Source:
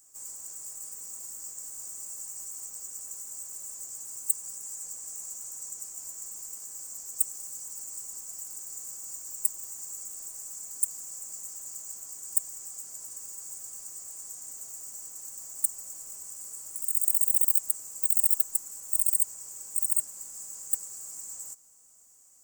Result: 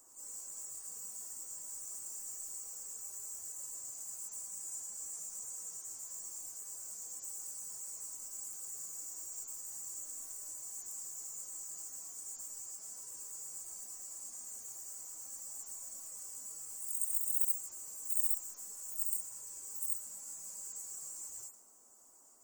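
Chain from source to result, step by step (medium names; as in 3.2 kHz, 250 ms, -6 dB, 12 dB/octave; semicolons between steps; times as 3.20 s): harmonic-percussive separation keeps harmonic; band noise 220–1200 Hz -75 dBFS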